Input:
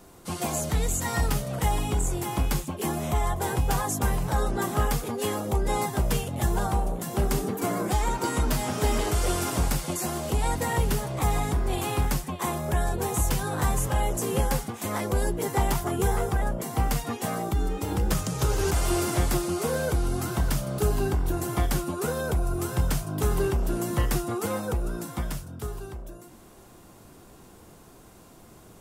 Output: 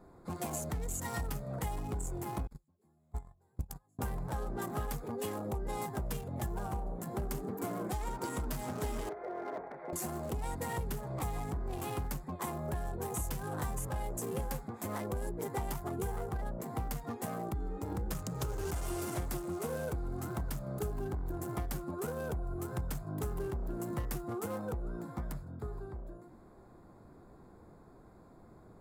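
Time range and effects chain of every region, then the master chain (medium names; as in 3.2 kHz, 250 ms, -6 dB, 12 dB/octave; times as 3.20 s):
2.47–3.99 s: gate -21 dBFS, range -40 dB + tone controls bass +7 dB, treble +14 dB + loudspeaker Doppler distortion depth 0.31 ms
9.09–9.93 s: compression, threshold -27 dBFS + cabinet simulation 400–2200 Hz, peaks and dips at 410 Hz +7 dB, 660 Hz +7 dB, 1.2 kHz -4 dB, 2 kHz +6 dB
whole clip: local Wiener filter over 15 samples; treble shelf 11 kHz +7.5 dB; compression 3:1, threshold -30 dBFS; trim -5 dB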